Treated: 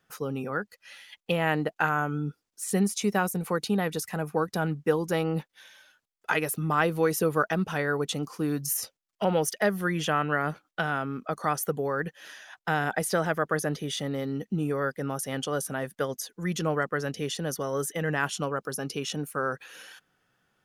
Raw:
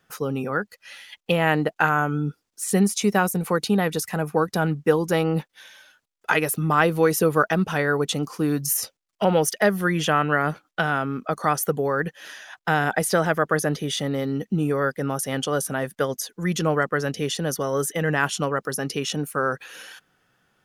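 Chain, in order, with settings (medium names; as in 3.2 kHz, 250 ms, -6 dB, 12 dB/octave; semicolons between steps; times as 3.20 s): 18.43–19.03 s: band-stop 1.9 kHz, Q 5.8; trim -5.5 dB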